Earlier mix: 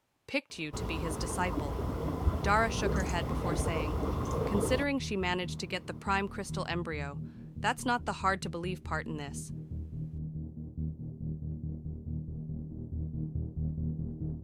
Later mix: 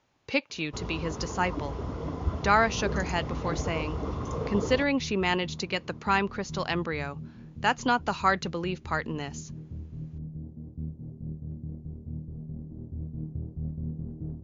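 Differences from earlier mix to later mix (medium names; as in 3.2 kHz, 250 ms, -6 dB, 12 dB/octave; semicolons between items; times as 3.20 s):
speech +5.5 dB; master: add brick-wall FIR low-pass 7.2 kHz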